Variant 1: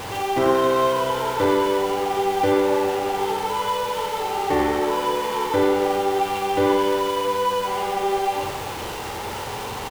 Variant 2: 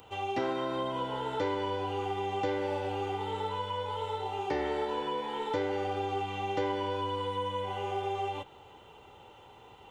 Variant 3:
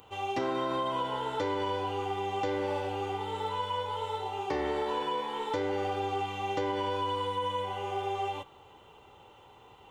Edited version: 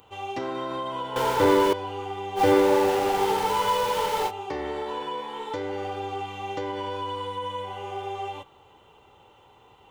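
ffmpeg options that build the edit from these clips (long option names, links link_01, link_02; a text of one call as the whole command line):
ffmpeg -i take0.wav -i take1.wav -i take2.wav -filter_complex "[0:a]asplit=2[link_01][link_02];[2:a]asplit=3[link_03][link_04][link_05];[link_03]atrim=end=1.162[link_06];[link_01]atrim=start=1.158:end=1.732[link_07];[link_04]atrim=start=1.728:end=2.41[link_08];[link_02]atrim=start=2.35:end=4.32[link_09];[link_05]atrim=start=4.26[link_10];[link_06][link_07]acrossfade=duration=0.004:curve1=hsin:curve2=hsin[link_11];[link_11][link_08]acrossfade=duration=0.004:curve1=hsin:curve2=hsin[link_12];[link_12][link_09]acrossfade=duration=0.06:curve1=tri:curve2=tri[link_13];[link_13][link_10]acrossfade=duration=0.06:curve1=tri:curve2=tri" out.wav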